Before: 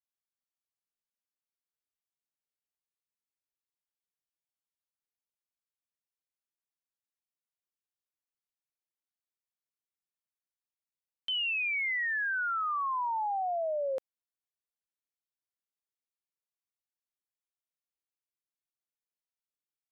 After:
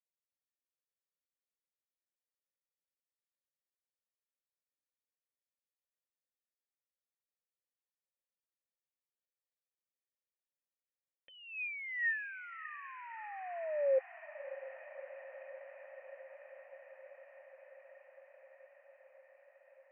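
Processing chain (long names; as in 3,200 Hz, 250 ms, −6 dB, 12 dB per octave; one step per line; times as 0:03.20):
formant resonators in series e
feedback delay with all-pass diffusion 633 ms, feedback 79%, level −14 dB
level +4.5 dB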